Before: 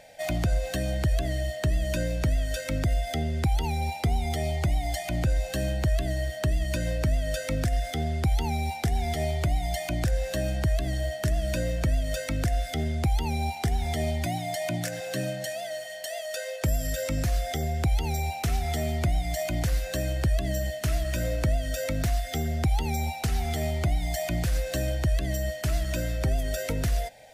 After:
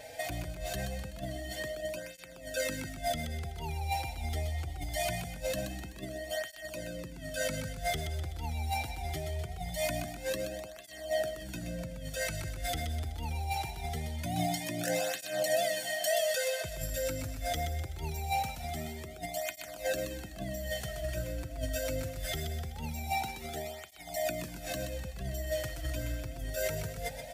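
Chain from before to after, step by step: high shelf 11000 Hz +6.5 dB; negative-ratio compressor -34 dBFS, ratio -1; on a send: feedback echo 0.126 s, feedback 51%, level -7 dB; on the sum: tape flanging out of phase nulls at 0.23 Hz, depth 5.6 ms

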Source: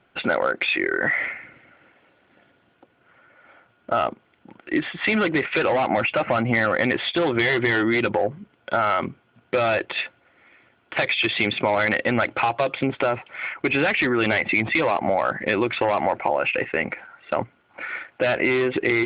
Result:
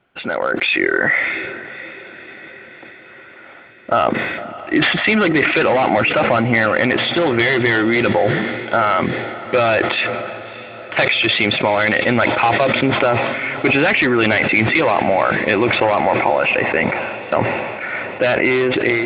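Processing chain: AGC; on a send: diffused feedback echo 0.625 s, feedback 64%, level -15.5 dB; on the sum: sustainer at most 33 dB/s; gain -2 dB

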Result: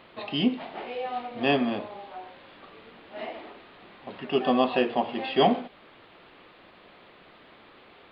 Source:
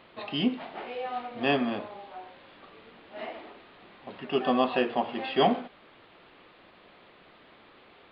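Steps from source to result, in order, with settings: dynamic EQ 1400 Hz, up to -4 dB, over -47 dBFS, Q 1.7; gain +2.5 dB

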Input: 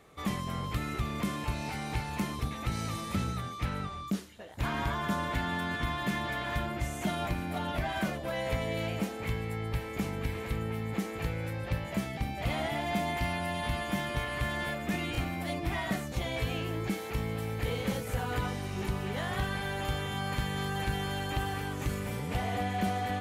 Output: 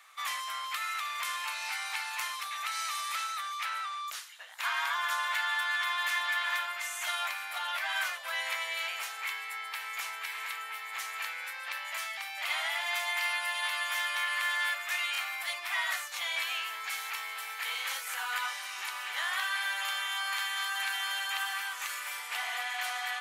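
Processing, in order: HPF 1100 Hz 24 dB/oct; gain +6.5 dB

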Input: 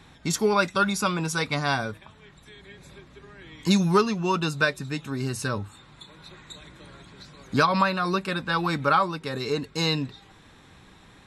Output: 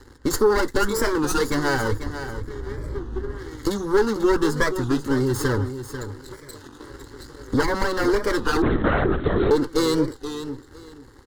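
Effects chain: minimum comb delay 0.44 ms; 1.92–3.38 tilt -2.5 dB/oct; 6.37–6.9 HPF 130 Hz 12 dB/oct; high shelf 3100 Hz -10 dB; sample leveller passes 2; compressor, threshold -22 dBFS, peak gain reduction 7.5 dB; fixed phaser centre 660 Hz, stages 6; feedback echo 0.492 s, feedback 21%, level -10.5 dB; 8.62–9.51 LPC vocoder at 8 kHz whisper; record warp 33 1/3 rpm, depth 160 cents; gain +9 dB

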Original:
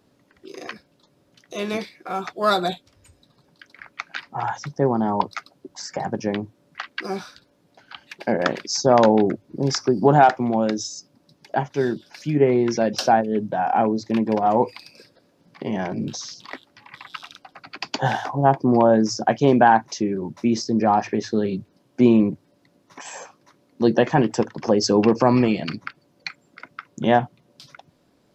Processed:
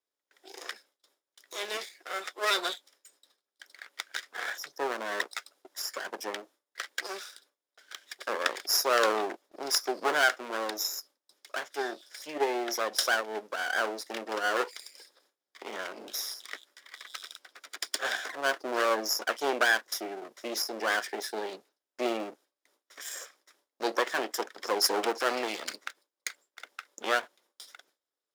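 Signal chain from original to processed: minimum comb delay 0.56 ms; HPF 420 Hz 24 dB/oct; gate with hold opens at -49 dBFS; high shelf 3600 Hz +9.5 dB; gain -6 dB

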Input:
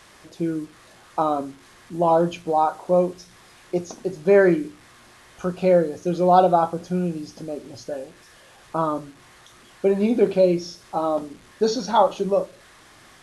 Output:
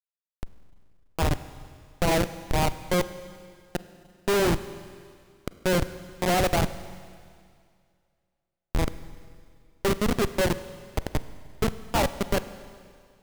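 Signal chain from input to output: self-modulated delay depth 0.099 ms; Schmitt trigger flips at -15.5 dBFS; Schroeder reverb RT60 2.2 s, combs from 33 ms, DRR 13.5 dB; gain +1.5 dB

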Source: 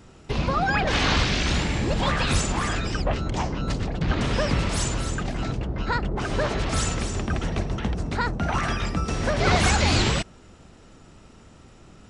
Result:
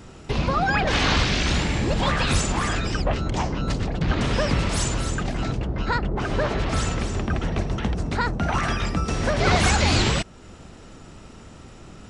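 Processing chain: 5.99–7.59 LPF 3900 Hz 6 dB/oct; in parallel at -0.5 dB: compressor, threshold -37 dBFS, peak gain reduction 20 dB

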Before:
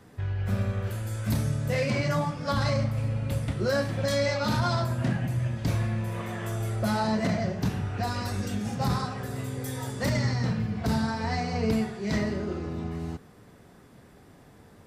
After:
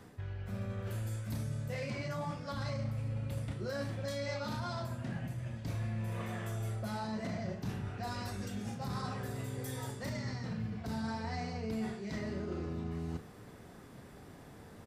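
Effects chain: reverse; compressor 5:1, threshold -37 dBFS, peak gain reduction 14 dB; reverse; doubler 36 ms -11 dB

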